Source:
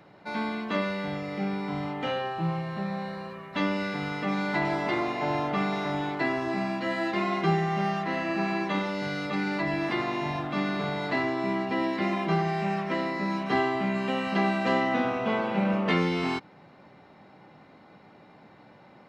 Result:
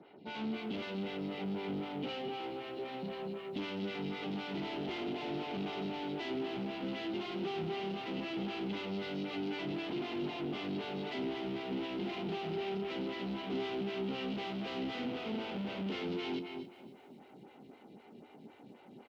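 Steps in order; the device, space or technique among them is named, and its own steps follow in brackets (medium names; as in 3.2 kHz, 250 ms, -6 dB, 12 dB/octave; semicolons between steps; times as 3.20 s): 2.28–3.03 s: steep high-pass 260 Hz 96 dB/octave; delay 240 ms -14.5 dB; vibe pedal into a guitar amplifier (lamp-driven phase shifter 3.9 Hz; valve stage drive 41 dB, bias 0.7; cabinet simulation 100–4400 Hz, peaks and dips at 240 Hz +7 dB, 400 Hz +7 dB, 580 Hz -6 dB, 1.1 kHz -10 dB, 1.7 kHz -9 dB, 3 kHz +7 dB); bit-crushed delay 266 ms, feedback 35%, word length 11-bit, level -14.5 dB; trim +3 dB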